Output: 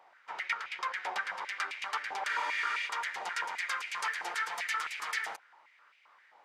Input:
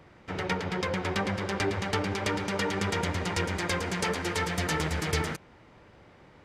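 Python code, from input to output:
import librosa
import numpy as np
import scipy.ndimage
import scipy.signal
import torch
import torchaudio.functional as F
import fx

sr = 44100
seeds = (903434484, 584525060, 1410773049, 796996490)

y = fx.spec_freeze(x, sr, seeds[0], at_s=2.29, hold_s=0.57)
y = fx.filter_held_highpass(y, sr, hz=7.6, low_hz=800.0, high_hz=2400.0)
y = y * 10.0 ** (-8.0 / 20.0)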